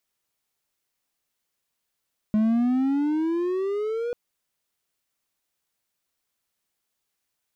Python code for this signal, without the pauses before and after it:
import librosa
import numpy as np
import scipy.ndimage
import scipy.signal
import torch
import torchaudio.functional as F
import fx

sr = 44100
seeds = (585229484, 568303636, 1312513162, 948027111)

y = fx.riser_tone(sr, length_s=1.79, level_db=-15.5, wave='triangle', hz=211.0, rise_st=14.5, swell_db=-8.0)